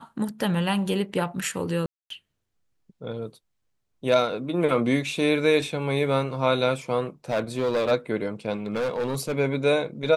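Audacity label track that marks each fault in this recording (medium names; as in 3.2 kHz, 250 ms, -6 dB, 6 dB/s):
1.860000	2.100000	dropout 243 ms
7.300000	7.920000	clipped -19.5 dBFS
8.660000	9.360000	clipped -22.5 dBFS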